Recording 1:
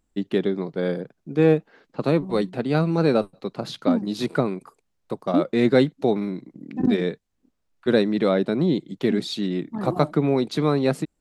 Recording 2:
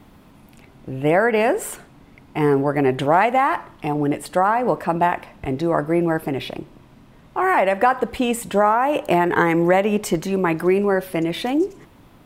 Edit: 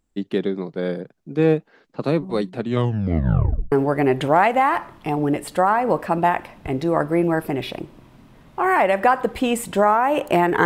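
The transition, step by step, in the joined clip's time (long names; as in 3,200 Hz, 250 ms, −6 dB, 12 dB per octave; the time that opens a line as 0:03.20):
recording 1
0:02.55: tape stop 1.17 s
0:03.72: continue with recording 2 from 0:02.50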